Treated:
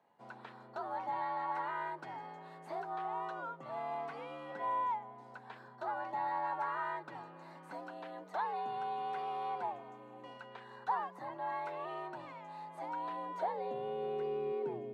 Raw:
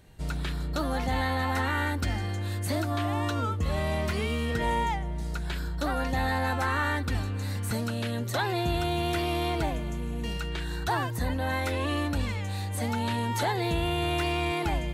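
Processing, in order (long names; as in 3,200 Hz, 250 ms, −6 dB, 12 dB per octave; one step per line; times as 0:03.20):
band-pass filter sweep 810 Hz → 340 Hz, 0:12.95–0:14.42
frequency shifter +69 Hz
level −3 dB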